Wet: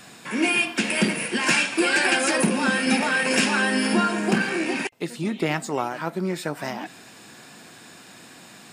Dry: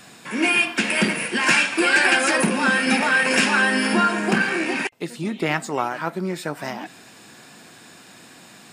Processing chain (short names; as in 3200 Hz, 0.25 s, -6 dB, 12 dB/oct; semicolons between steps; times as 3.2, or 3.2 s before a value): dynamic EQ 1500 Hz, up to -5 dB, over -30 dBFS, Q 0.7